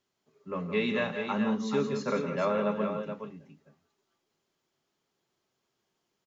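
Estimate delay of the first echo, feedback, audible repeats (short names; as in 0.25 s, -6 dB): 0.103 s, no steady repeat, 3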